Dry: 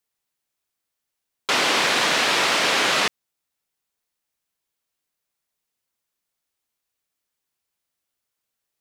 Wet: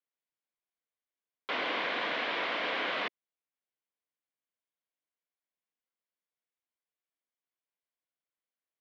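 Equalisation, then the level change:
loudspeaker in its box 320–2,800 Hz, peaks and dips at 390 Hz −7 dB, 590 Hz −3 dB, 850 Hz −8 dB, 1,300 Hz −8 dB, 1,800 Hz −5 dB, 2,600 Hz −7 dB
−5.5 dB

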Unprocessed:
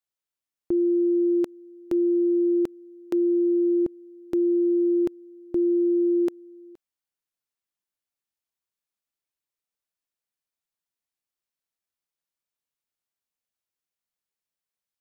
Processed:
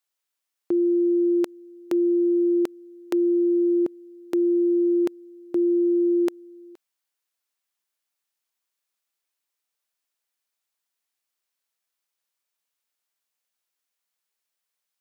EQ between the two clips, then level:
high-pass filter 650 Hz 6 dB per octave
+7.5 dB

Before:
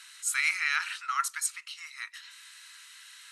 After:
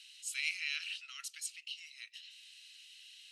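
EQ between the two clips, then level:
four-pole ladder high-pass 2,600 Hz, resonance 70%
parametric band 4,900 Hz +6 dB 0.68 octaves
−1.5 dB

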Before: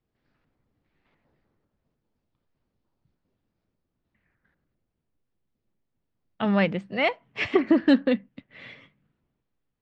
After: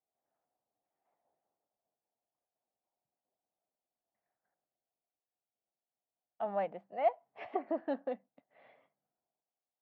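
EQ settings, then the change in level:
resonant band-pass 720 Hz, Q 5.4
0.0 dB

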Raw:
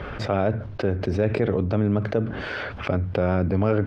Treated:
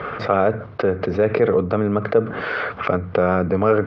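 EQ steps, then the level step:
loudspeaker in its box 110–5,200 Hz, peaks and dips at 170 Hz +4 dB, 460 Hz +9 dB, 710 Hz +5 dB, 1,200 Hz +8 dB, 2,100 Hz +5 dB
parametric band 1,300 Hz +5 dB 0.9 octaves
0.0 dB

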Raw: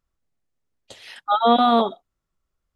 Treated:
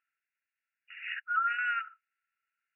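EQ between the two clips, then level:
linear-phase brick-wall band-pass 1,300–2,900 Hz
high-frequency loss of the air 260 metres
spectral tilt +3 dB per octave
+6.0 dB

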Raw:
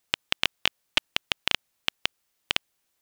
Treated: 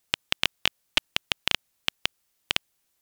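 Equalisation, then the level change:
low-shelf EQ 230 Hz +4 dB
parametric band 15,000 Hz +4 dB 1.9 octaves
−1.0 dB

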